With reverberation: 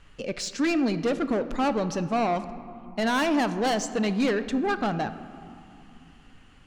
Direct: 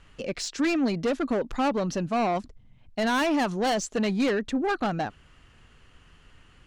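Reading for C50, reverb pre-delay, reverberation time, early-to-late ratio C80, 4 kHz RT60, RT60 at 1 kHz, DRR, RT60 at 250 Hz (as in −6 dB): 12.5 dB, 3 ms, 2.6 s, 13.5 dB, 1.2 s, 2.9 s, 11.0 dB, 3.5 s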